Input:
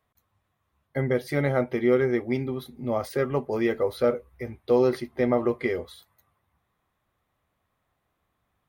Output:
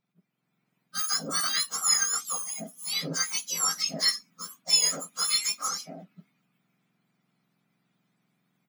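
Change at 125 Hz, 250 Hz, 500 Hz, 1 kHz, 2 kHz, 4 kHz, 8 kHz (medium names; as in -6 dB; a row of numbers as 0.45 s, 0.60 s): -15.5 dB, -16.5 dB, -22.0 dB, -2.0 dB, -1.5 dB, +19.5 dB, no reading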